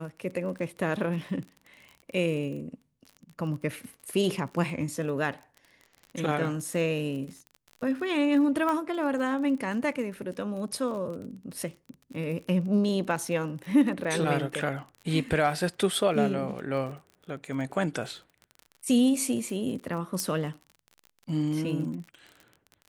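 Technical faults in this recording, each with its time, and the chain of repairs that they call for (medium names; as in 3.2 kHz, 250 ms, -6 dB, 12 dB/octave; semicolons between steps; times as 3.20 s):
crackle 33 per s -37 dBFS
8.69 s: pop -18 dBFS
20.20 s: pop -14 dBFS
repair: de-click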